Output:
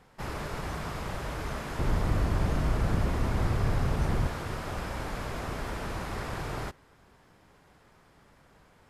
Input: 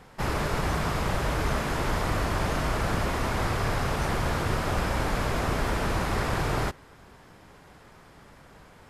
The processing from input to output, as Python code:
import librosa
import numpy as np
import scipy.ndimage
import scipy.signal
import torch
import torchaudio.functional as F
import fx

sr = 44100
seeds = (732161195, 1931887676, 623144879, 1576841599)

y = fx.low_shelf(x, sr, hz=360.0, db=11.0, at=(1.79, 4.27))
y = y * 10.0 ** (-8.0 / 20.0)